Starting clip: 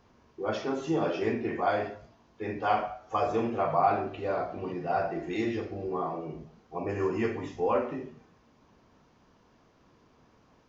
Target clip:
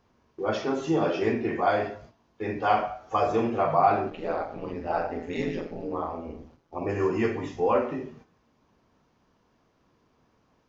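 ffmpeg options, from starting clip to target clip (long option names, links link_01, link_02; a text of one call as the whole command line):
ffmpeg -i in.wav -filter_complex "[0:a]agate=range=-8dB:threshold=-53dB:ratio=16:detection=peak,asplit=3[link_01][link_02][link_03];[link_01]afade=type=out:start_time=4.1:duration=0.02[link_04];[link_02]aeval=exprs='val(0)*sin(2*PI*82*n/s)':channel_layout=same,afade=type=in:start_time=4.1:duration=0.02,afade=type=out:start_time=6.8:duration=0.02[link_05];[link_03]afade=type=in:start_time=6.8:duration=0.02[link_06];[link_04][link_05][link_06]amix=inputs=3:normalize=0,volume=3.5dB" out.wav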